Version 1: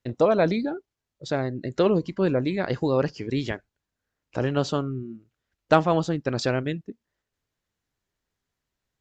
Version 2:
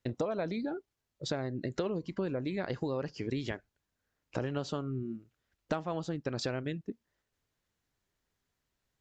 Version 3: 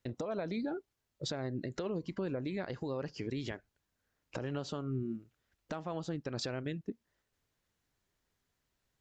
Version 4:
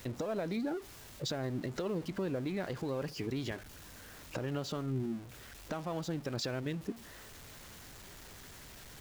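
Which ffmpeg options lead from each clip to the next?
-af "acompressor=threshold=-31dB:ratio=8"
-af "alimiter=level_in=5dB:limit=-24dB:level=0:latency=1:release=203,volume=-5dB,volume=1dB"
-af "aeval=exprs='val(0)+0.5*0.00562*sgn(val(0))':c=same"

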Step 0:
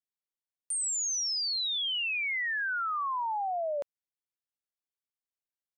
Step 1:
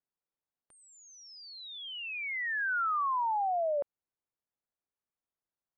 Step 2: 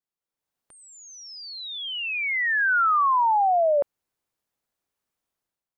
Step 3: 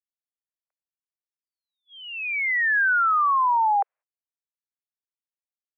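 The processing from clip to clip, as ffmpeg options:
-af "lowpass=1.3k,alimiter=level_in=8dB:limit=-24dB:level=0:latency=1,volume=-8dB,volume=5dB"
-af "dynaudnorm=f=170:g=5:m=11dB,volume=-1dB"
-af "highpass=f=260:t=q:w=0.5412,highpass=f=260:t=q:w=1.307,lowpass=f=2.3k:t=q:w=0.5176,lowpass=f=2.3k:t=q:w=0.7071,lowpass=f=2.3k:t=q:w=1.932,afreqshift=230,agate=range=-32dB:threshold=-48dB:ratio=16:detection=peak"

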